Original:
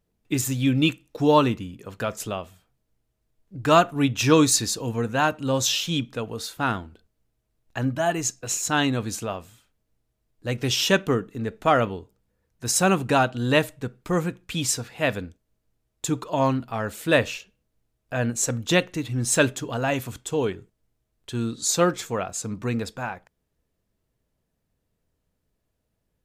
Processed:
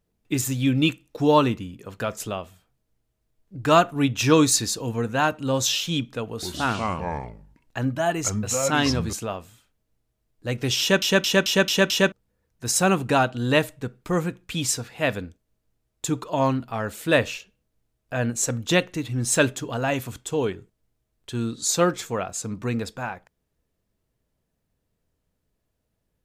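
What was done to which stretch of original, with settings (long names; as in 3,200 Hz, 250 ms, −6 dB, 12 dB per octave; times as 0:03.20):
0:06.31–0:09.13: delay with pitch and tempo change per echo 114 ms, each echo −4 semitones, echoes 2
0:10.80: stutter in place 0.22 s, 6 plays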